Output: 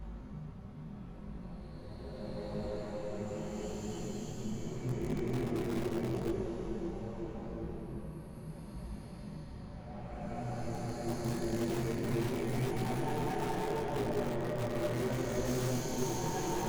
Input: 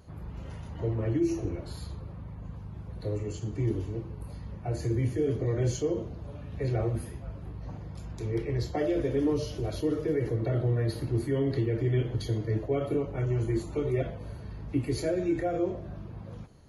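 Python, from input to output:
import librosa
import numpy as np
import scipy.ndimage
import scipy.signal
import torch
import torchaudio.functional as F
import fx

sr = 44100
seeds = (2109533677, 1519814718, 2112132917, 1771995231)

p1 = fx.lower_of_two(x, sr, delay_ms=5.3)
p2 = fx.paulstretch(p1, sr, seeds[0], factor=5.0, window_s=0.5, from_s=2.54)
p3 = (np.mod(10.0 ** (25.0 / 20.0) * p2 + 1.0, 2.0) - 1.0) / 10.0 ** (25.0 / 20.0)
p4 = p2 + F.gain(torch.from_numpy(p3), -7.0).numpy()
p5 = fx.detune_double(p4, sr, cents=27)
y = F.gain(torch.from_numpy(p5), -1.5).numpy()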